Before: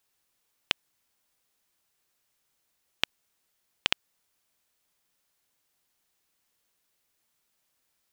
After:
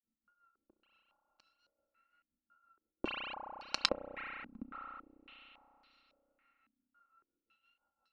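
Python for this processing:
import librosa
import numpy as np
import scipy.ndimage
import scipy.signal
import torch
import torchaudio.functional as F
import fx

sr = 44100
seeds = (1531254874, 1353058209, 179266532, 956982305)

y = np.r_[np.sort(x[:len(x) // 32 * 32].reshape(-1, 32), axis=1).ravel(), x[len(x) // 32 * 32:]]
y = y + 0.61 * np.pad(y, (int(3.7 * sr / 1000.0), 0))[:len(y)]
y = fx.wow_flutter(y, sr, seeds[0], rate_hz=2.1, depth_cents=63.0)
y = fx.granulator(y, sr, seeds[1], grain_ms=198.0, per_s=5.8, spray_ms=16.0, spread_st=0)
y = fx.comb_fb(y, sr, f0_hz=210.0, decay_s=0.22, harmonics='odd', damping=0.0, mix_pct=40)
y = y + 10.0 ** (-8.5 / 20.0) * np.pad(y, (int(701 * sr / 1000.0), 0))[:len(y)]
y = fx.rev_spring(y, sr, rt60_s=3.6, pass_ms=(32,), chirp_ms=40, drr_db=6.0)
y = fx.filter_held_lowpass(y, sr, hz=3.6, low_hz=240.0, high_hz=4700.0)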